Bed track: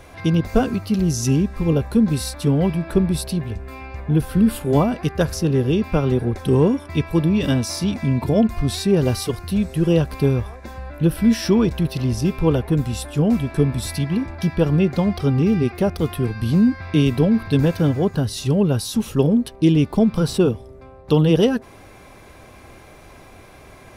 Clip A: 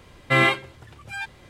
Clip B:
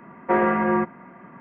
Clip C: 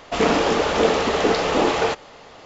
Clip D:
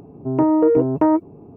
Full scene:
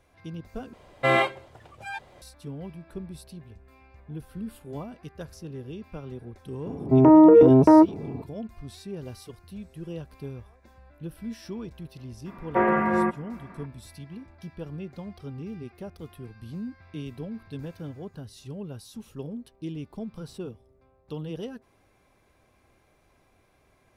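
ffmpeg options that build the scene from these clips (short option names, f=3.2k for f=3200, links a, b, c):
-filter_complex "[0:a]volume=-20dB[a];[1:a]equalizer=f=660:t=o:w=1.2:g=12[b];[4:a]alimiter=level_in=12.5dB:limit=-1dB:release=50:level=0:latency=1[c];[a]asplit=2[d][e];[d]atrim=end=0.734[f];[b]atrim=end=1.49,asetpts=PTS-STARTPTS,volume=-7dB[g];[e]atrim=start=2.216[h];[c]atrim=end=1.56,asetpts=PTS-STARTPTS,volume=-6dB,afade=t=in:d=0.004:c=hsin,afade=t=out:st=1.556:d=0.004:c=hsin,adelay=293706S[i];[2:a]atrim=end=1.4,asetpts=PTS-STARTPTS,volume=-2dB,afade=t=in:d=0.004:c=hsin,afade=t=out:st=1.396:d=0.004:c=hsin,adelay=12260[j];[f][g]acrossfade=d=0.004:c1=hsin:c2=hsin[k];[k][h]acrossfade=d=0.004:c1=hsin:c2=hsin[l];[l][i][j]amix=inputs=3:normalize=0"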